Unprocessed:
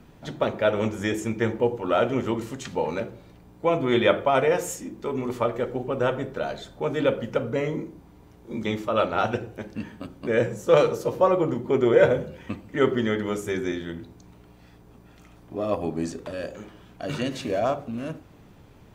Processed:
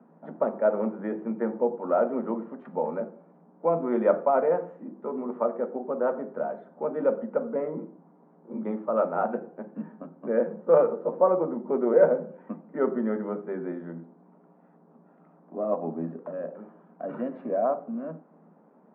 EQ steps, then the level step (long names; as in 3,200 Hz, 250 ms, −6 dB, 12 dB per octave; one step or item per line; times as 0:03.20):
Chebyshev high-pass with heavy ripple 160 Hz, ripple 6 dB
low-pass filter 1,400 Hz 24 dB per octave
0.0 dB